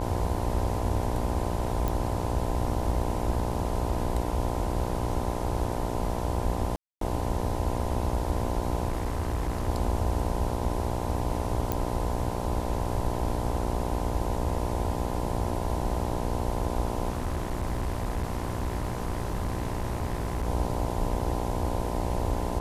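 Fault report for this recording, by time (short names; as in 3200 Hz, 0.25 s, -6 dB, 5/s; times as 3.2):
buzz 60 Hz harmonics 17 -32 dBFS
1.88 pop
6.76–7.01 gap 0.253 s
8.88–9.69 clipped -24 dBFS
11.72 pop -12 dBFS
17.09–20.47 clipped -25 dBFS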